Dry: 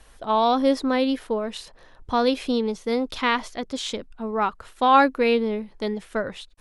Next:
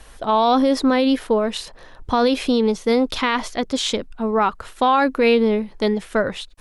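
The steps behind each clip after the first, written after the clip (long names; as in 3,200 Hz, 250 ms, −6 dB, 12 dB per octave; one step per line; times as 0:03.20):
brickwall limiter −16 dBFS, peak gain reduction 11 dB
level +7.5 dB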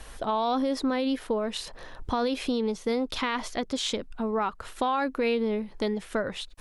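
downward compressor 2 to 1, threshold −32 dBFS, peak gain reduction 11 dB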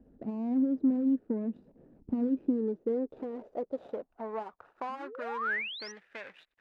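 running median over 41 samples
sound drawn into the spectrogram rise, 0:04.89–0:05.92, 210–6,100 Hz −33 dBFS
band-pass filter sweep 240 Hz → 2,000 Hz, 0:02.15–0:05.94
level +3 dB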